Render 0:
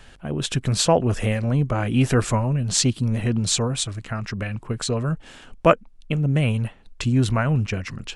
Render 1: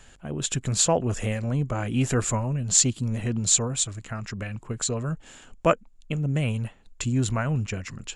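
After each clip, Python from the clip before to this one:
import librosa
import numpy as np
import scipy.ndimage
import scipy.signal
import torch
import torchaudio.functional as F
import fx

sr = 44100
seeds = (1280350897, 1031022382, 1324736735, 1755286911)

y = fx.peak_eq(x, sr, hz=7100.0, db=14.5, octaves=0.21)
y = y * 10.0 ** (-5.0 / 20.0)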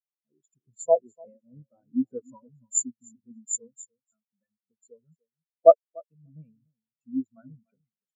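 y = scipy.signal.sosfilt(scipy.signal.butter(2, 230.0, 'highpass', fs=sr, output='sos'), x)
y = fx.echo_feedback(y, sr, ms=293, feedback_pct=28, wet_db=-7.0)
y = fx.spectral_expand(y, sr, expansion=4.0)
y = y * 10.0 ** (-1.0 / 20.0)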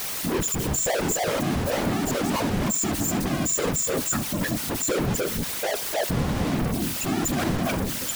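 y = np.sign(x) * np.sqrt(np.mean(np.square(x)))
y = y + 10.0 ** (-19.0 / 20.0) * np.pad(y, (int(72 * sr / 1000.0), 0))[:len(y)]
y = fx.whisperise(y, sr, seeds[0])
y = y * 10.0 ** (5.0 / 20.0)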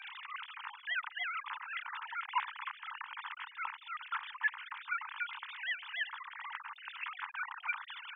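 y = fx.sine_speech(x, sr)
y = scipy.signal.sosfilt(scipy.signal.butter(16, 890.0, 'highpass', fs=sr, output='sos'), y)
y = y * 10.0 ** (-6.0 / 20.0)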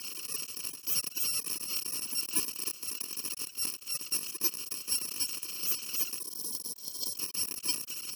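y = fx.bit_reversed(x, sr, seeds[1], block=64)
y = fx.spec_erase(y, sr, start_s=6.21, length_s=0.95, low_hz=1100.0, high_hz=3100.0)
y = fx.leveller(y, sr, passes=2)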